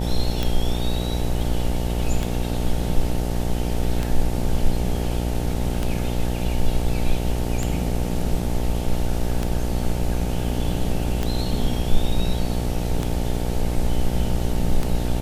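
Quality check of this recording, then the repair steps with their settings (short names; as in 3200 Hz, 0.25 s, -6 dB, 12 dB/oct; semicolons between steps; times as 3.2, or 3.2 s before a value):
buzz 60 Hz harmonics 15 -25 dBFS
tick 33 1/3 rpm -10 dBFS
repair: de-click; de-hum 60 Hz, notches 15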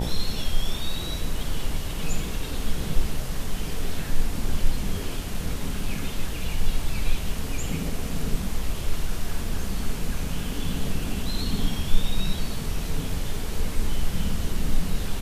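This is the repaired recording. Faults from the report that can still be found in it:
none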